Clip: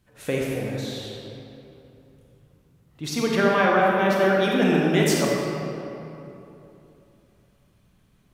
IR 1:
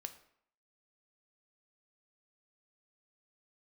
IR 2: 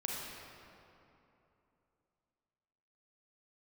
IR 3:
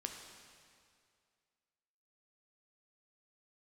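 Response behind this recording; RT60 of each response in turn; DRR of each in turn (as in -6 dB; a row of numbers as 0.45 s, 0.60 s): 2; 0.65 s, 3.0 s, 2.2 s; 7.5 dB, -3.0 dB, 2.5 dB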